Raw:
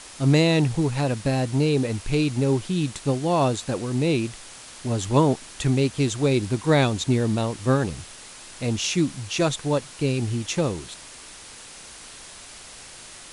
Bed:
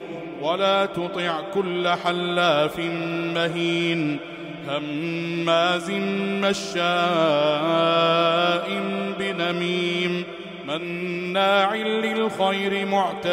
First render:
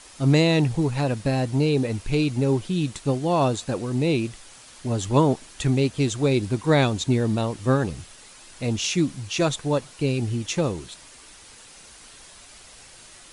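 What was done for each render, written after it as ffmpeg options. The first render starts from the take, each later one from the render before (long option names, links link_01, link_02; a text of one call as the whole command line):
ffmpeg -i in.wav -af "afftdn=noise_reduction=6:noise_floor=-43" out.wav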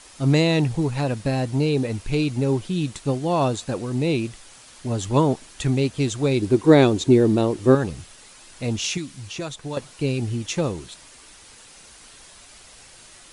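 ffmpeg -i in.wav -filter_complex "[0:a]asettb=1/sr,asplit=3[link_01][link_02][link_03];[link_01]atrim=end=6.424[link_04];[link_02]atrim=start=6.42:end=7.75,asetpts=PTS-STARTPTS,afade=type=in:duration=0.004:curve=qsin,afade=type=out:start_time=1.326:duration=0.004:curve=qsin,equalizer=frequency=360:width=1.5:gain=12[link_05];[link_03]atrim=start=7.746[link_06];[link_04][link_05]acrossfade=duration=0.004:curve1=hsin:curve2=qsin[link_07];[link_07][link_06]acrossfade=duration=0.004:curve1=qsin:curve2=hsin,asettb=1/sr,asplit=3[link_08][link_09][link_10];[link_08]atrim=end=8.974[link_11];[link_09]atrim=start=8.97:end=9.77,asetpts=PTS-STARTPTS,afade=type=in:duration=0.004:curve=qsin,afade=type=out:start_time=0.796:duration=0.004:curve=qsin,acrossover=split=1400|7900[link_12][link_13][link_14];[link_12]acompressor=threshold=-30dB:ratio=4[link_15];[link_13]acompressor=threshold=-36dB:ratio=4[link_16];[link_14]acompressor=threshold=-49dB:ratio=4[link_17];[link_15][link_16][link_17]amix=inputs=3:normalize=0[link_18];[link_10]atrim=start=9.766[link_19];[link_11][link_18]acrossfade=duration=0.004:curve1=hsin:curve2=qsin[link_20];[link_20][link_19]acrossfade=duration=0.004:curve1=qsin:curve2=hsin" out.wav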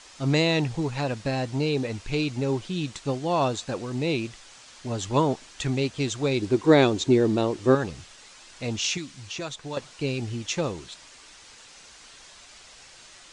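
ffmpeg -i in.wav -af "lowpass=frequency=7500:width=0.5412,lowpass=frequency=7500:width=1.3066,lowshelf=frequency=470:gain=-6.5" out.wav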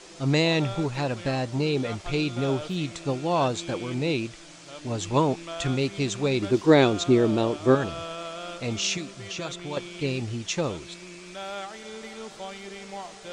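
ffmpeg -i in.wav -i bed.wav -filter_complex "[1:a]volume=-17dB[link_01];[0:a][link_01]amix=inputs=2:normalize=0" out.wav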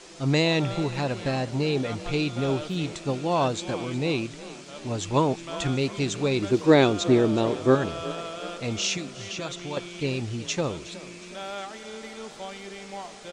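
ffmpeg -i in.wav -filter_complex "[0:a]asplit=6[link_01][link_02][link_03][link_04][link_05][link_06];[link_02]adelay=365,afreqshift=30,volume=-16.5dB[link_07];[link_03]adelay=730,afreqshift=60,volume=-22dB[link_08];[link_04]adelay=1095,afreqshift=90,volume=-27.5dB[link_09];[link_05]adelay=1460,afreqshift=120,volume=-33dB[link_10];[link_06]adelay=1825,afreqshift=150,volume=-38.6dB[link_11];[link_01][link_07][link_08][link_09][link_10][link_11]amix=inputs=6:normalize=0" out.wav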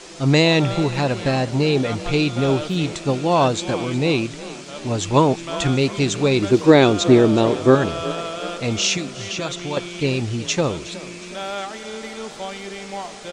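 ffmpeg -i in.wav -af "volume=7dB,alimiter=limit=-1dB:level=0:latency=1" out.wav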